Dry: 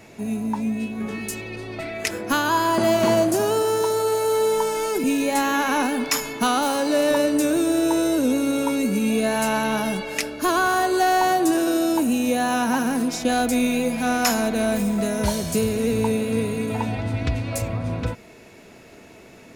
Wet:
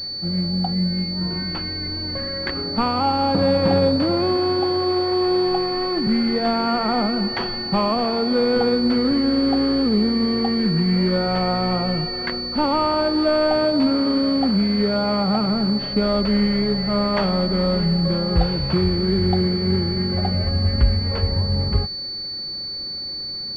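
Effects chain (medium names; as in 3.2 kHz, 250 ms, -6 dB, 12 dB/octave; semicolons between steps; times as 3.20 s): tape speed -17%; bass shelf 100 Hz +11.5 dB; class-D stage that switches slowly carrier 4.5 kHz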